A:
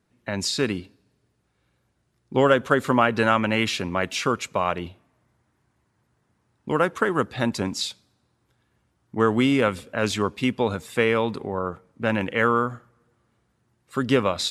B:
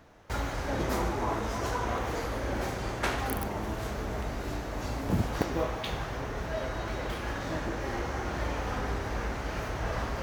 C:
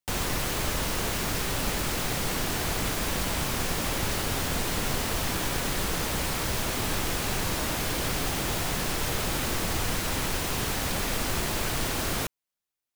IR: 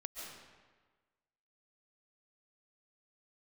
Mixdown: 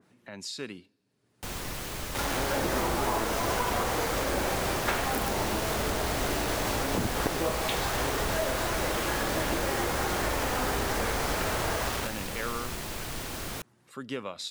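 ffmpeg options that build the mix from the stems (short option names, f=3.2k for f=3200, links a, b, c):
-filter_complex "[0:a]highpass=140,acompressor=mode=upward:threshold=-32dB:ratio=2.5,adynamicequalizer=threshold=0.0251:dfrequency=2100:dqfactor=0.7:tfrequency=2100:tqfactor=0.7:attack=5:release=100:ratio=0.375:range=2:mode=boostabove:tftype=highshelf,volume=-14.5dB[a];[1:a]bass=f=250:g=-7,treble=f=4k:g=-3,dynaudnorm=f=140:g=7:m=10.5dB,acrusher=bits=4:mix=0:aa=0.000001,adelay=1850,volume=0dB[b];[2:a]adelay=1350,volume=-7.5dB[c];[a][b]amix=inputs=2:normalize=0,acompressor=threshold=-28dB:ratio=3,volume=0dB[d];[c][d]amix=inputs=2:normalize=0"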